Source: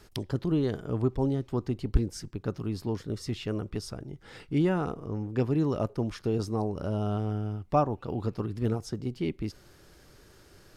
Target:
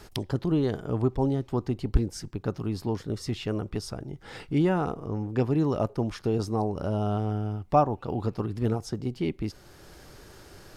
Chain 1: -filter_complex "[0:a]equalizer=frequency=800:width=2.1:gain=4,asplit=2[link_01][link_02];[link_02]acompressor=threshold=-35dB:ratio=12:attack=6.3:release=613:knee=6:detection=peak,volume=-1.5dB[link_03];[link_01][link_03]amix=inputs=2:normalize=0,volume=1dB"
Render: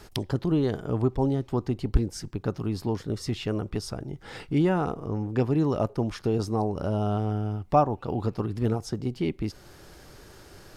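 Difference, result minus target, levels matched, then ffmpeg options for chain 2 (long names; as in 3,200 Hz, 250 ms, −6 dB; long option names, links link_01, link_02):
downward compressor: peak gain reduction −8 dB
-filter_complex "[0:a]equalizer=frequency=800:width=2.1:gain=4,asplit=2[link_01][link_02];[link_02]acompressor=threshold=-43.5dB:ratio=12:attack=6.3:release=613:knee=6:detection=peak,volume=-1.5dB[link_03];[link_01][link_03]amix=inputs=2:normalize=0,volume=1dB"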